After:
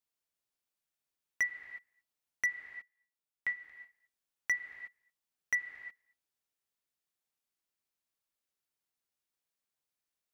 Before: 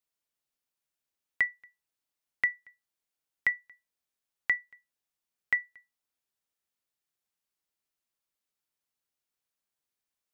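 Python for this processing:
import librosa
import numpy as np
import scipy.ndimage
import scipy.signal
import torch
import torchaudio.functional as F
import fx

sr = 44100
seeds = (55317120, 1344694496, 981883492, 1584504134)

y = fx.comb_fb(x, sr, f0_hz=78.0, decay_s=0.25, harmonics='all', damping=0.0, mix_pct=80, at=(2.56, 3.54))
y = fx.rev_gated(y, sr, seeds[0], gate_ms=390, shape='flat', drr_db=10.0)
y = np.clip(y, -10.0 ** (-22.5 / 20.0), 10.0 ** (-22.5 / 20.0))
y = F.gain(torch.from_numpy(y), -2.5).numpy()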